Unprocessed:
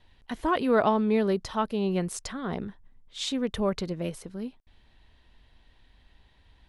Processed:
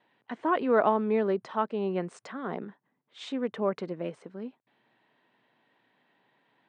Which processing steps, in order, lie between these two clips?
three-band isolator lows -12 dB, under 230 Hz, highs -17 dB, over 2500 Hz; FFT band-pass 110–9200 Hz

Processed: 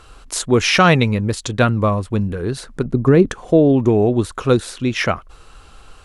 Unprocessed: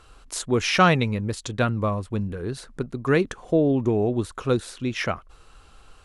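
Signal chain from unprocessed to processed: 2.85–3.3 tilt shelf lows +7.5 dB, about 840 Hz; maximiser +8.5 dB; gain -1 dB

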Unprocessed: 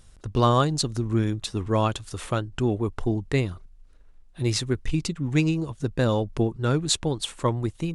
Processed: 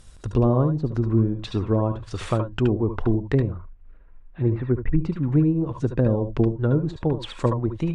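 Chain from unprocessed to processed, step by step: 3.51–5.05 LPF 2400 Hz 24 dB/oct; treble ducked by the level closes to 470 Hz, closed at -19.5 dBFS; reverb, pre-delay 67 ms, DRR 5 dB; gain +3.5 dB

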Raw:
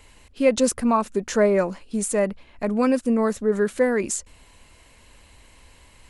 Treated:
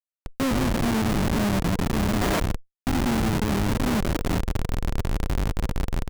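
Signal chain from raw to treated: stepped spectrum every 0.4 s; recorder AGC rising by 24 dB/s; tone controls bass +14 dB, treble +2 dB; frequency-shifting echo 0.163 s, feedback 41%, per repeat +96 Hz, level -7.5 dB; compressor 6:1, threshold -24 dBFS, peak gain reduction 12 dB; 2.21–2.87 tilt +4.5 dB/oct; Schmitt trigger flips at -24.5 dBFS; notch 480 Hz, Q 12; running maximum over 9 samples; gain +5.5 dB

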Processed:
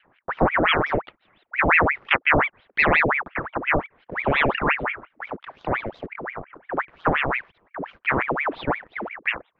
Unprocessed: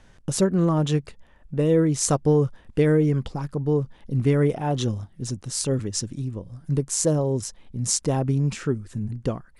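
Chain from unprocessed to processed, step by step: mistuned SSB -140 Hz 150–3200 Hz; in parallel at -7 dB: bit-crush 7-bit; on the sum: LFO low-pass saw up 0.66 Hz 640–1600 Hz; ring modulator with a swept carrier 1300 Hz, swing 80%, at 5.7 Hz

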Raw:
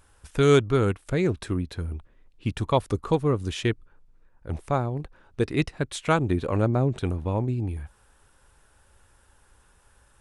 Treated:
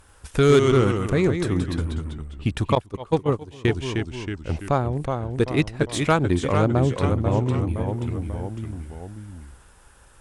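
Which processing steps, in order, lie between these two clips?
echoes that change speed 90 ms, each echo -1 st, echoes 3, each echo -6 dB; in parallel at +1.5 dB: compressor 12:1, threshold -31 dBFS, peak gain reduction 19.5 dB; on the sum: soft clip -6.5 dBFS, distortion -25 dB; 2.75–3.65 gate -19 dBFS, range -18 dB; added harmonics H 7 -30 dB, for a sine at -7.5 dBFS; gain +1.5 dB

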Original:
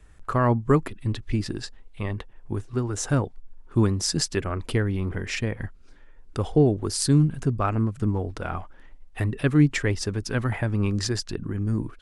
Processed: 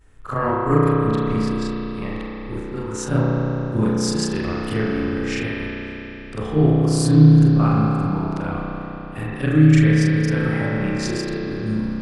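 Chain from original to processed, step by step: short-time reversal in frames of 92 ms; spring tank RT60 3.9 s, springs 32 ms, chirp 50 ms, DRR -4.5 dB; gain +2 dB

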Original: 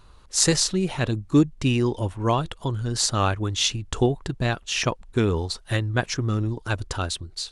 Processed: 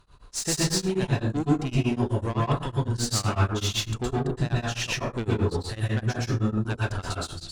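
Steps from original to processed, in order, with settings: tube stage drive 19 dB, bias 0.25; plate-style reverb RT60 0.61 s, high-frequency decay 0.5×, pre-delay 0.105 s, DRR -6 dB; beating tremolo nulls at 7.9 Hz; gain -4 dB

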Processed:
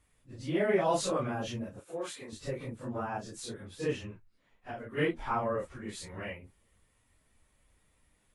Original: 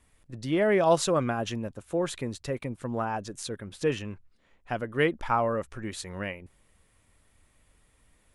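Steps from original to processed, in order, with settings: phase scrambler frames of 0.1 s; 1.8–2.33 HPF 710 Hz 6 dB/oct; 3.99–4.97 compressor 5:1, threshold -33 dBFS, peak gain reduction 7.5 dB; gain -5 dB

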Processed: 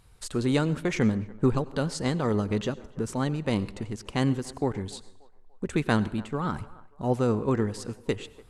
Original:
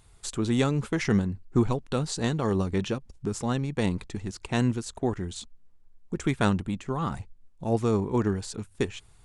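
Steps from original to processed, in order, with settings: high shelf 6800 Hz -6 dB; narrowing echo 0.317 s, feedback 47%, band-pass 770 Hz, level -20 dB; speed mistake 44.1 kHz file played as 48 kHz; plate-style reverb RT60 0.54 s, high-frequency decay 0.8×, pre-delay 80 ms, DRR 18 dB

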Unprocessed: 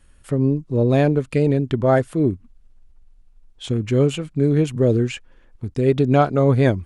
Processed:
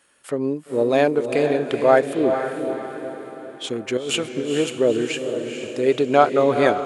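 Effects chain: HPF 420 Hz 12 dB/oct; 3.97–4.52 negative-ratio compressor -29 dBFS, ratio -1; diffused feedback echo 0.465 s, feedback 49%, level -6.5 dB; gain +3.5 dB

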